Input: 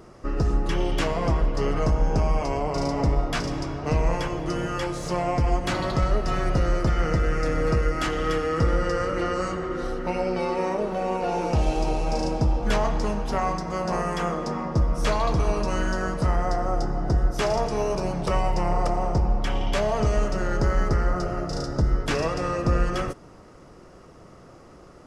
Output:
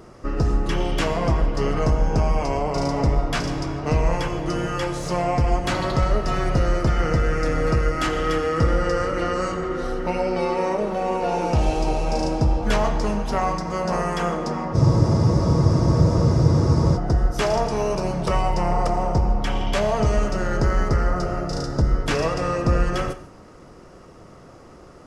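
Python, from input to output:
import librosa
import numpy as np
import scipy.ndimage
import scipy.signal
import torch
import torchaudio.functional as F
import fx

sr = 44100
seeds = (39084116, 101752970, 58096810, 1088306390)

y = fx.rev_gated(x, sr, seeds[0], gate_ms=180, shape='flat', drr_db=12.0)
y = fx.spec_freeze(y, sr, seeds[1], at_s=14.77, hold_s=2.19)
y = F.gain(torch.from_numpy(y), 2.5).numpy()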